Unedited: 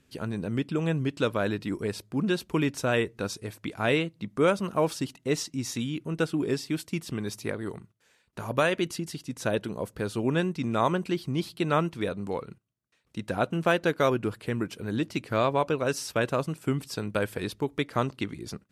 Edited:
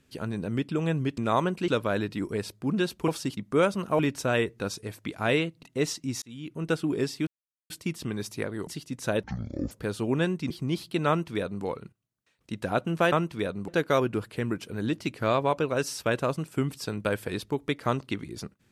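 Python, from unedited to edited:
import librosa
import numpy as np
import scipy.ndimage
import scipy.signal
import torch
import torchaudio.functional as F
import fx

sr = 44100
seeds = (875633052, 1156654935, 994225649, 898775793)

y = fx.edit(x, sr, fx.swap(start_s=2.58, length_s=1.64, other_s=4.84, other_length_s=0.29),
    fx.fade_in_span(start_s=5.72, length_s=0.44),
    fx.insert_silence(at_s=6.77, length_s=0.43),
    fx.cut(start_s=7.74, length_s=1.31),
    fx.speed_span(start_s=9.61, length_s=0.26, speed=0.54),
    fx.move(start_s=10.66, length_s=0.5, to_s=1.18),
    fx.duplicate(start_s=11.74, length_s=0.56, to_s=13.78), tone=tone)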